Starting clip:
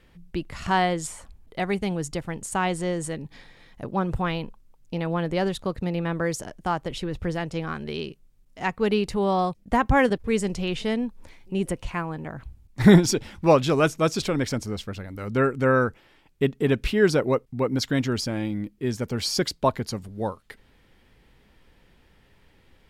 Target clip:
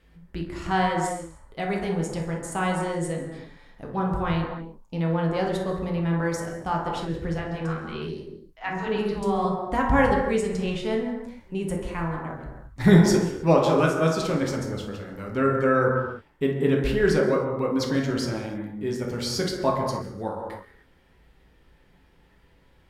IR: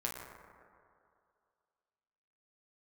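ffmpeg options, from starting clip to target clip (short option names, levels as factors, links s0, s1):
-filter_complex "[0:a]asettb=1/sr,asplit=3[s0][s1][s2];[s0]atrim=end=7.384[s3];[s1]atrim=start=7.38:end=9.45,asetpts=PTS-STARTPTS,afade=t=in:d=0.004:c=qsin,afade=t=out:st=2.066:d=0.004:c=qsin,acrossover=split=610|4600[s4][s5][s6];[s4]adelay=70[s7];[s6]adelay=140[s8];[s7][s5][s8]amix=inputs=3:normalize=0,atrim=end_sample=91287[s9];[s2]atrim=start=9.446[s10];[s3][s9]acrossfade=d=0.004:c1=hsin:c2=qsin[s11];[s11][s10]acrossfade=d=0.004:c1=qsin:c2=hsin[s12];[1:a]atrim=start_sample=2205,afade=t=out:st=0.34:d=0.01,atrim=end_sample=15435,asetrate=38808,aresample=44100[s13];[s12][s13]afir=irnorm=-1:irlink=0,volume=0.668"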